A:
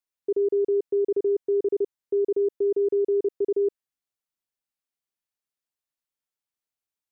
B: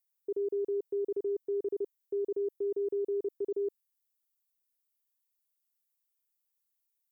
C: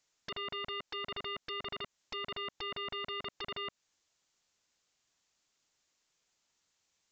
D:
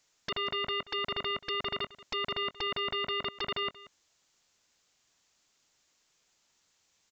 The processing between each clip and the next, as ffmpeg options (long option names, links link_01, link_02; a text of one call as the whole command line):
ffmpeg -i in.wav -af "aemphasis=mode=production:type=75fm,volume=-8.5dB" out.wav
ffmpeg -i in.wav -af "acompressor=threshold=-38dB:ratio=4,aresample=16000,aeval=exprs='0.0251*sin(PI/2*7.08*val(0)/0.0251)':channel_layout=same,aresample=44100,volume=-4.5dB" out.wav
ffmpeg -i in.wav -af "aecho=1:1:182:0.119,volume=6.5dB" out.wav